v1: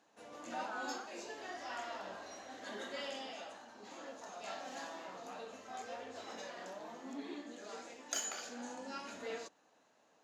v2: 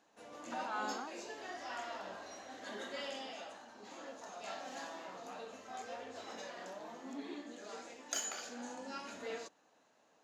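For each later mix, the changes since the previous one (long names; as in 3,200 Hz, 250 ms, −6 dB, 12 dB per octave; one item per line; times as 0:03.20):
speech: remove resonant band-pass 1,500 Hz, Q 4.9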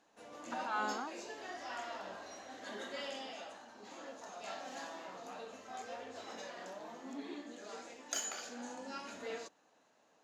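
speech +3.5 dB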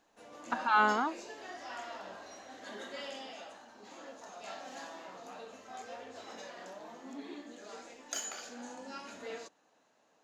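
speech +11.0 dB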